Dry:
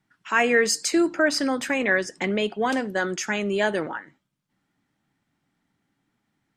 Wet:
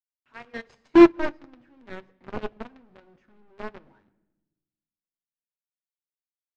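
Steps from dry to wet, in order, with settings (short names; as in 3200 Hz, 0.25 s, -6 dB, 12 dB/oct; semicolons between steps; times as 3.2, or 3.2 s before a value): tilt +2 dB/oct, from 0.94 s -3.5 dB/oct; companded quantiser 2-bit; tape spacing loss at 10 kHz 39 dB; reverb RT60 1.1 s, pre-delay 7 ms, DRR 7 dB; upward expander 2.5:1, over -22 dBFS; gain -3 dB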